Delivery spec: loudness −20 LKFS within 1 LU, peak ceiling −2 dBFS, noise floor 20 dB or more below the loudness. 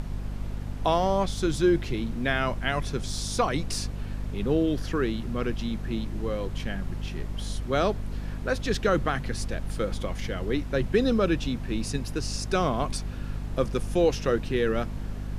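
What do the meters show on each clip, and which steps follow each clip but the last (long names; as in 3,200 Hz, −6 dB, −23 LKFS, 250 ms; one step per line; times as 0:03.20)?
mains hum 50 Hz; hum harmonics up to 250 Hz; level of the hum −31 dBFS; background noise floor −35 dBFS; target noise floor −49 dBFS; integrated loudness −28.5 LKFS; sample peak −10.0 dBFS; target loudness −20.0 LKFS
→ hum removal 50 Hz, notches 5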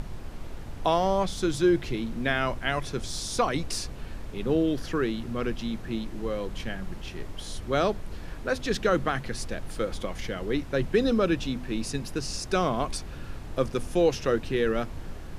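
mains hum none found; background noise floor −39 dBFS; target noise floor −49 dBFS
→ noise reduction from a noise print 10 dB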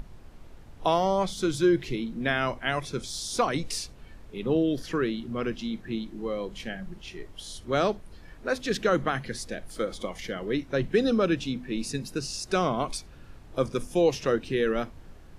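background noise floor −49 dBFS; integrated loudness −28.5 LKFS; sample peak −11.5 dBFS; target loudness −20.0 LKFS
→ level +8.5 dB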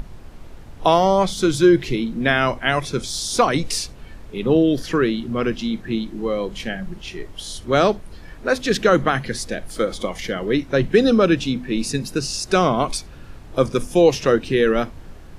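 integrated loudness −20.0 LKFS; sample peak −3.0 dBFS; background noise floor −40 dBFS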